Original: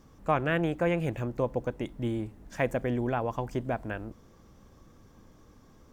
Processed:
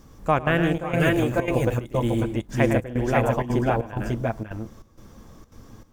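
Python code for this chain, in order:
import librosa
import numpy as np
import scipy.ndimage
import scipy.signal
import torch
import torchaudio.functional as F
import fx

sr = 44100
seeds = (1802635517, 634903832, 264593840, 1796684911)

y = fx.low_shelf(x, sr, hz=87.0, db=5.0)
y = fx.echo_multitap(y, sr, ms=(106, 153, 546, 555), db=(-7.0, -10.5, -3.0, -4.0))
y = fx.step_gate(y, sr, bpm=193, pattern='xxxxx.xxxx..x', floor_db=-12.0, edge_ms=4.5)
y = fx.high_shelf(y, sr, hz=5800.0, db=fx.steps((0.0, 6.0), (0.93, 12.0), (2.22, 4.0)))
y = y * librosa.db_to_amplitude(5.0)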